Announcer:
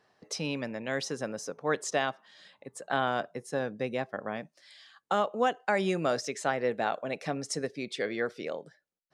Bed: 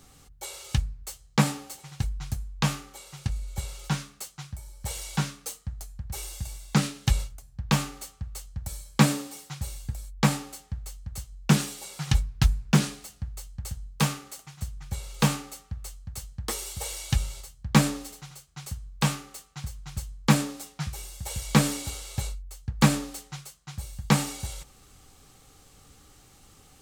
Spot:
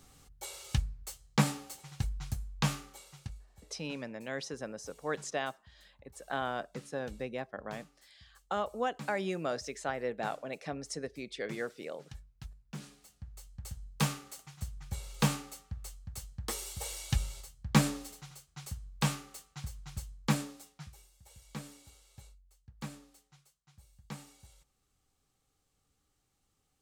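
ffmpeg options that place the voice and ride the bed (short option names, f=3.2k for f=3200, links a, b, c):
-filter_complex "[0:a]adelay=3400,volume=-6dB[a];[1:a]volume=15.5dB,afade=t=out:st=2.85:d=0.62:silence=0.0891251,afade=t=in:st=12.71:d=1.35:silence=0.0944061,afade=t=out:st=19.79:d=1.31:silence=0.133352[b];[a][b]amix=inputs=2:normalize=0"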